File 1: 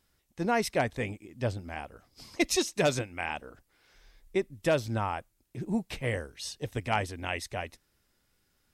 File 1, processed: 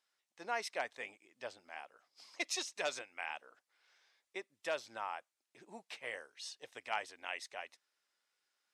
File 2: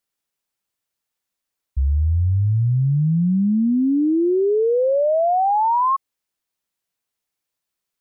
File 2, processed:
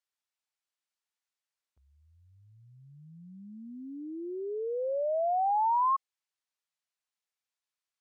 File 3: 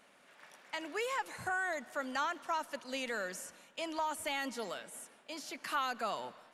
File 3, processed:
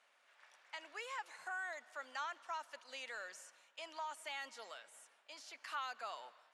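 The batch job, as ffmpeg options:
-af "highpass=730,lowpass=7.9k,volume=-7dB"

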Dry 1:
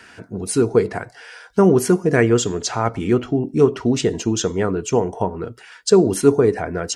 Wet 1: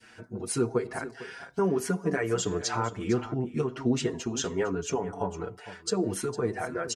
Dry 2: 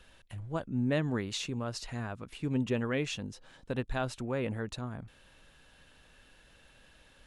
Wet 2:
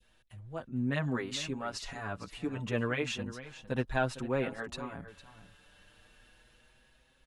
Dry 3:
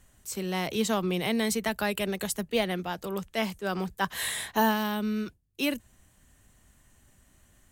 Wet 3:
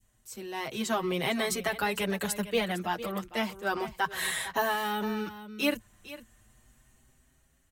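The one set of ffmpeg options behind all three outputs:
-filter_complex "[0:a]dynaudnorm=f=260:g=7:m=7dB,alimiter=limit=-10dB:level=0:latency=1:release=316,adynamicequalizer=threshold=0.0112:dfrequency=1300:dqfactor=0.73:tfrequency=1300:tqfactor=0.73:attack=5:release=100:ratio=0.375:range=2.5:mode=boostabove:tftype=bell,aecho=1:1:455:0.188,asplit=2[a][b];[b]adelay=6.2,afreqshift=0.32[c];[a][c]amix=inputs=2:normalize=1,volume=-5dB"

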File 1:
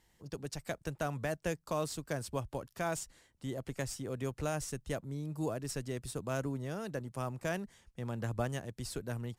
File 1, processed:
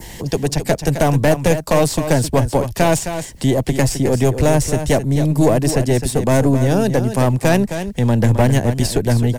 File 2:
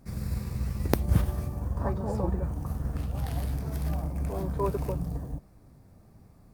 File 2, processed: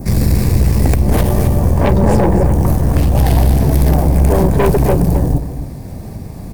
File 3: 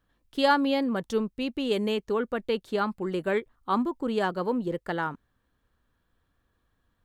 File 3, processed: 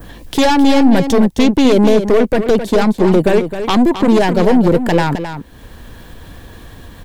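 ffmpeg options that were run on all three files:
-filter_complex "[0:a]acrossover=split=190|3300[a][b][c];[a]acompressor=threshold=-31dB:ratio=4[d];[b]acompressor=threshold=-29dB:ratio=4[e];[c]acompressor=threshold=-47dB:ratio=4[f];[d][e][f]amix=inputs=3:normalize=0,asplit=2[g][h];[h]aeval=exprs='0.335*sin(PI/2*8.91*val(0)/0.335)':c=same,volume=-10dB[i];[g][i]amix=inputs=2:normalize=0,aeval=exprs='0.422*(cos(1*acos(clip(val(0)/0.422,-1,1)))-cos(1*PI/2))+0.133*(cos(4*acos(clip(val(0)/0.422,-1,1)))-cos(4*PI/2))+0.188*(cos(5*acos(clip(val(0)/0.422,-1,1)))-cos(5*PI/2))+0.075*(cos(7*acos(clip(val(0)/0.422,-1,1)))-cos(7*PI/2))':c=same,equalizer=f=1.3k:t=o:w=0.48:g=-9.5,acompressor=mode=upward:threshold=-25dB:ratio=2.5,adynamicequalizer=threshold=0.0141:dfrequency=3300:dqfactor=0.83:tfrequency=3300:tqfactor=0.83:attack=5:release=100:ratio=0.375:range=2.5:mode=cutabove:tftype=bell,asplit=2[j][k];[k]aecho=0:1:263:0.335[l];[j][l]amix=inputs=2:normalize=0,volume=3.5dB"

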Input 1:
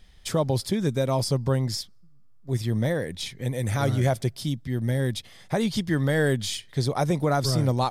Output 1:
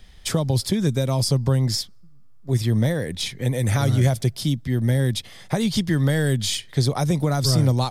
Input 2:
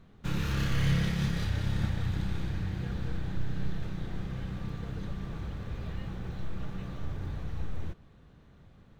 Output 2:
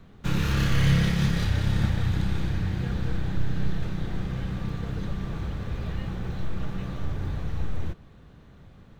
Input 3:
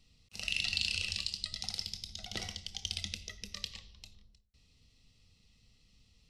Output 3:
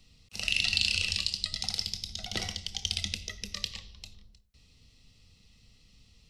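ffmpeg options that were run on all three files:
-filter_complex "[0:a]acrossover=split=210|3000[a][b][c];[b]acompressor=threshold=-30dB:ratio=6[d];[a][d][c]amix=inputs=3:normalize=0,volume=6dB"

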